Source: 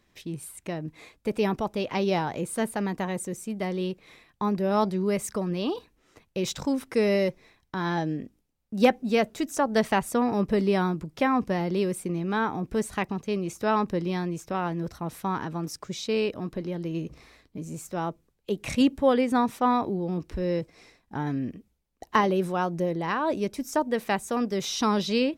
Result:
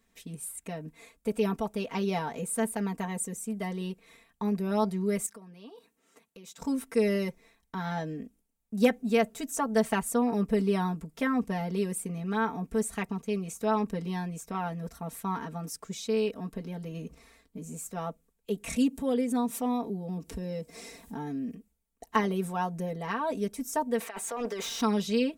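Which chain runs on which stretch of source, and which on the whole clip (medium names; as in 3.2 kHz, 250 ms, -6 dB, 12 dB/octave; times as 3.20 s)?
5.26–6.61 s: high-pass 180 Hz + compression 3:1, threshold -46 dBFS
18.76–21.55 s: high-pass 120 Hz 6 dB/octave + peaking EQ 1.5 kHz -7 dB 2.2 oct + upward compressor, threshold -26 dBFS
24.00–24.81 s: high-pass 370 Hz + compressor with a negative ratio -33 dBFS, ratio -0.5 + overdrive pedal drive 19 dB, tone 2 kHz, clips at -18.5 dBFS
whole clip: resonant high shelf 6.4 kHz +6 dB, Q 1.5; comb 4.4 ms, depth 96%; trim -7 dB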